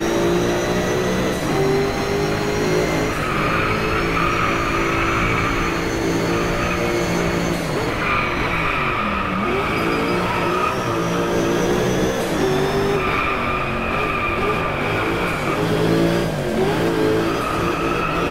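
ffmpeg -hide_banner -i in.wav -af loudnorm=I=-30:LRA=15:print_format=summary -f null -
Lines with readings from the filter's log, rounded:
Input Integrated:    -19.5 LUFS
Input True Peak:      -5.9 dBTP
Input LRA:             0.6 LU
Input Threshold:     -29.5 LUFS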